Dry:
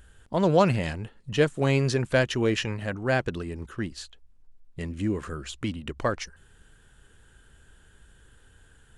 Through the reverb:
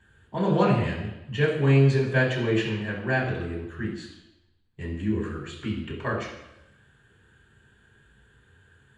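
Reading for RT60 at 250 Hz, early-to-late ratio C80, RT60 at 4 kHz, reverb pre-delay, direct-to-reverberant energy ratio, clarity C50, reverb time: 0.90 s, 7.0 dB, 0.90 s, 3 ms, −9.5 dB, 4.5 dB, 0.90 s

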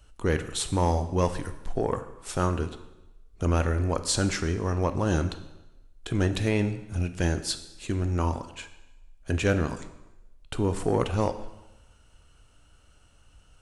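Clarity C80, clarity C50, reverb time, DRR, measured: 14.0 dB, 12.0 dB, 1.0 s, 9.5 dB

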